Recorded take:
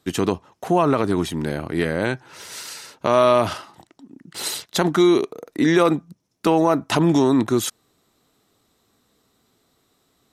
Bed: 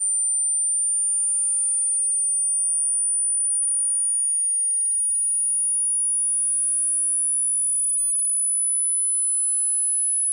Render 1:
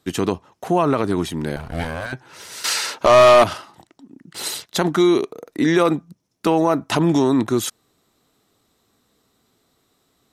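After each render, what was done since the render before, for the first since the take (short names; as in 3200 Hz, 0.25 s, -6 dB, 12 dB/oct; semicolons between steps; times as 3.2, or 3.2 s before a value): 1.56–2.13 minimum comb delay 1.3 ms; 2.64–3.44 overdrive pedal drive 23 dB, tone 5900 Hz, clips at -3 dBFS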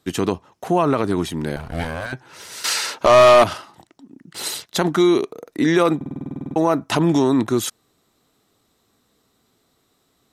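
5.96 stutter in place 0.05 s, 12 plays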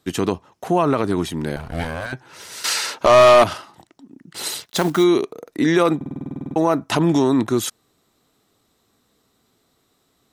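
4.62–5.05 block floating point 5-bit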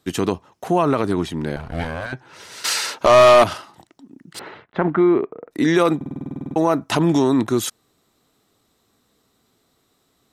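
1.13–2.65 high shelf 7600 Hz -11 dB; 4.39–5.51 LPF 2000 Hz 24 dB/oct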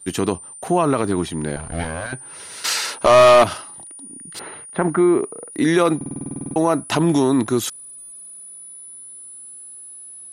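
add bed -17 dB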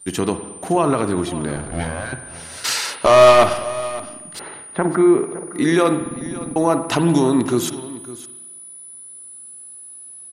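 echo 0.561 s -16.5 dB; spring tank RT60 1.1 s, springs 48/54 ms, chirp 40 ms, DRR 9 dB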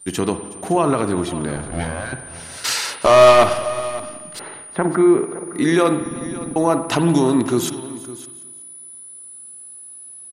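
feedback echo 0.369 s, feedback 32%, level -21 dB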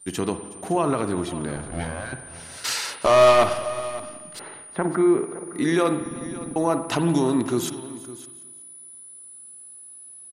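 gain -5 dB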